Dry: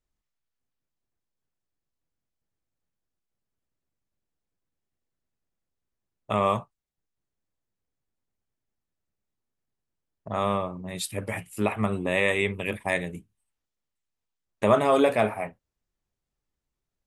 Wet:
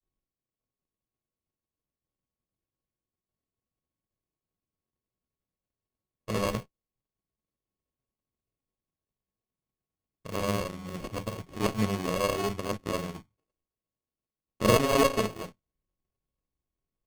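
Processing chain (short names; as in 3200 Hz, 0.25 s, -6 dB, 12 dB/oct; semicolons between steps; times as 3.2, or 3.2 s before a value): Chebyshev band-stop 620–8100 Hz, order 2; sample-rate reducer 1100 Hz, jitter 0%; grains, spray 24 ms, pitch spread up and down by 0 st; running maximum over 17 samples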